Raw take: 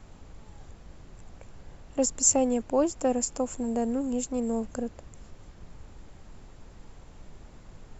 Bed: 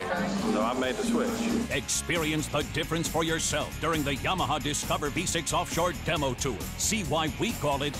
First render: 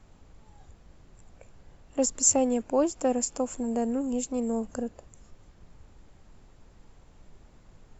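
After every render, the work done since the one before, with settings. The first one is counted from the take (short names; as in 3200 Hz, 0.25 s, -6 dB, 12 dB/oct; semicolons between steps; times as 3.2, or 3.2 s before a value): noise print and reduce 6 dB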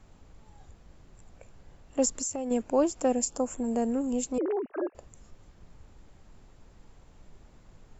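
2.09–2.51 compressor 12:1, threshold -29 dBFS; 3.12–3.63 bell 970 Hz -> 6100 Hz -13.5 dB 0.45 oct; 4.38–4.95 sine-wave speech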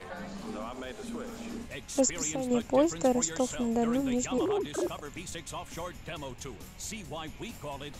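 add bed -12 dB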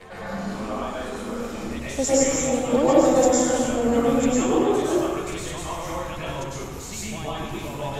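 plate-style reverb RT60 1.6 s, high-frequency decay 0.5×, pre-delay 90 ms, DRR -9 dB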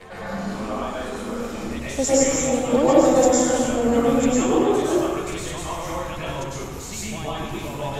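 gain +1.5 dB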